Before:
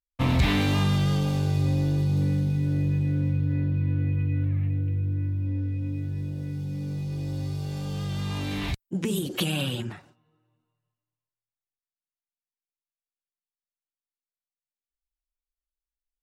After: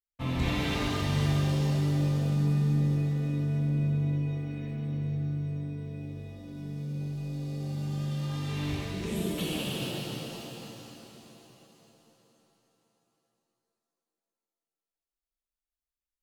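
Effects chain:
flanger 0.96 Hz, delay 3.7 ms, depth 2.2 ms, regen +65%
reverb with rising layers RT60 3.8 s, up +7 semitones, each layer −8 dB, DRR −6.5 dB
level −7.5 dB

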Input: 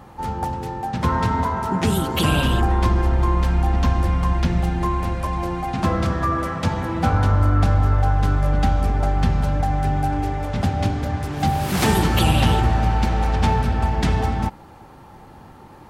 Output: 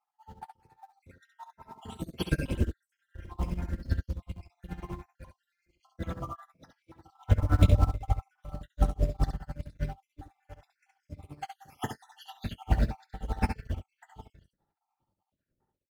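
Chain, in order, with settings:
time-frequency cells dropped at random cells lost 70%
notch filter 1,100 Hz, Q 7.8
in parallel at −12 dB: log-companded quantiser 4 bits
on the sum: shaped tremolo triangle 10 Hz, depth 85%
double-tracking delay 22 ms −13 dB
on a send: ambience of single reflections 21 ms −15.5 dB, 68 ms −3 dB
on the sum: expander for the loud parts 2.5 to 1, over −37 dBFS
level +1 dB

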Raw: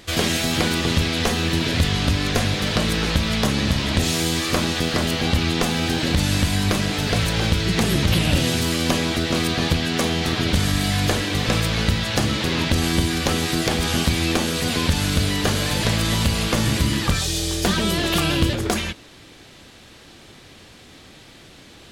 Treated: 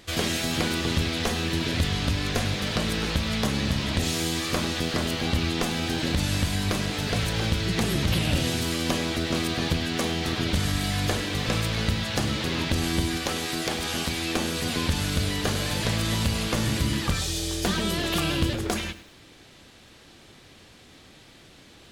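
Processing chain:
0:13.17–0:14.35: low-shelf EQ 230 Hz −8.5 dB
feedback echo at a low word length 100 ms, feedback 35%, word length 7 bits, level −14.5 dB
level −5.5 dB

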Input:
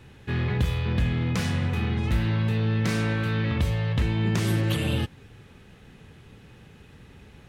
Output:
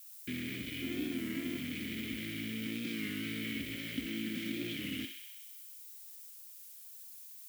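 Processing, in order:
0:00.82–0:01.58: samples sorted by size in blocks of 128 samples
0:02.66–0:03.09: high-pass filter 130 Hz 12 dB per octave
0:03.75–0:04.63: comb filter 3.8 ms, depth 73%
downward compressor 4 to 1, threshold −35 dBFS, peak gain reduction 14.5 dB
bit reduction 6 bits
formant filter i
background noise violet −62 dBFS
feedback echo with a high-pass in the loop 64 ms, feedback 76%, high-pass 870 Hz, level −6 dB
wow of a warped record 33 1/3 rpm, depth 100 cents
level +9 dB

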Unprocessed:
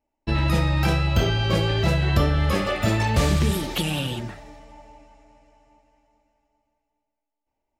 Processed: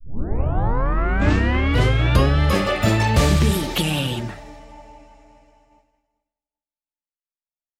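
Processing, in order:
turntable start at the beginning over 2.39 s
downward expander −54 dBFS
automatic gain control gain up to 4 dB

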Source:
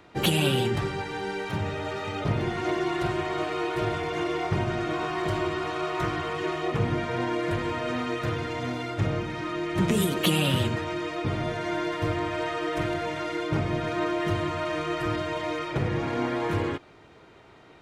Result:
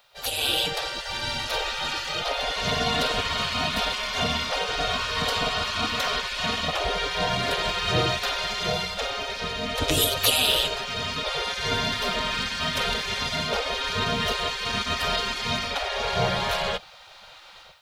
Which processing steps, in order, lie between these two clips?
automatic gain control gain up to 14.5 dB
octave-band graphic EQ 125/250/500/1,000/2,000/4,000/8,000 Hz −6/+12/−4/−11/−11/+5/−7 dB
gate on every frequency bin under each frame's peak −20 dB weak
bit reduction 12 bits
level +4.5 dB

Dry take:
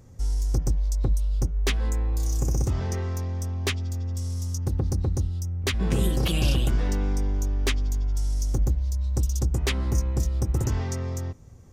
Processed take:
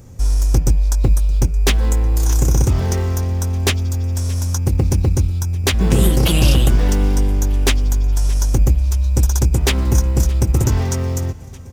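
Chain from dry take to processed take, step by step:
high-shelf EQ 6,300 Hz +7.5 dB
in parallel at −9 dB: decimation without filtering 18×
on the sum: repeating echo 621 ms, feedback 58%, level −21.5 dB
level +7 dB

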